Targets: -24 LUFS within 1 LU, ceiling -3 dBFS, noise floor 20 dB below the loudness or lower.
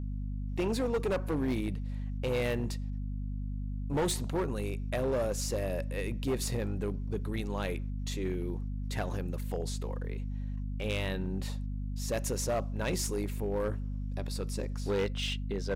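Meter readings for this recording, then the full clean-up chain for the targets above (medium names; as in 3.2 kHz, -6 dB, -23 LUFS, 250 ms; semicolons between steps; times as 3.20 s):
clipped samples 2.0%; clipping level -25.5 dBFS; hum 50 Hz; highest harmonic 250 Hz; hum level -33 dBFS; loudness -34.5 LUFS; peak level -25.5 dBFS; loudness target -24.0 LUFS
-> clip repair -25.5 dBFS; de-hum 50 Hz, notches 5; trim +10.5 dB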